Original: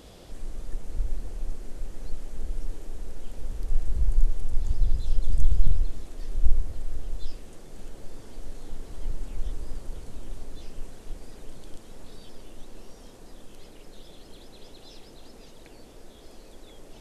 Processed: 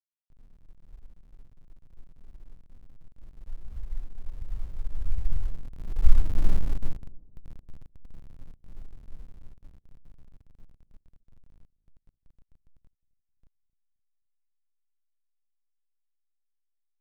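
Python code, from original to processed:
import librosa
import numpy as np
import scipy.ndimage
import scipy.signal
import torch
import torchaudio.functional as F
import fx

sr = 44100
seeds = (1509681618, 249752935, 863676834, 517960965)

y = fx.delta_hold(x, sr, step_db=-30.5)
y = fx.doppler_pass(y, sr, speed_mps=21, closest_m=4.4, pass_at_s=6.49)
y = fx.bass_treble(y, sr, bass_db=9, treble_db=0)
y = fx.echo_wet_lowpass(y, sr, ms=262, feedback_pct=43, hz=520.0, wet_db=-20.5)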